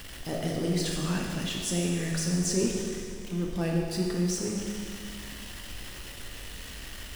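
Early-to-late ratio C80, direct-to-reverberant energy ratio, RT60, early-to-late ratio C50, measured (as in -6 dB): 2.5 dB, -1.0 dB, 2.3 s, 1.0 dB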